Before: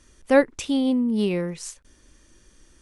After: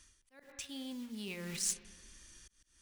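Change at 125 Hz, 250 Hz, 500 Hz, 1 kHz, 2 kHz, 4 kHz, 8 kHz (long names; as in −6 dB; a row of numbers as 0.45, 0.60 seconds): −16.0, −22.5, −29.0, −28.0, −18.0, −8.0, +0.5 decibels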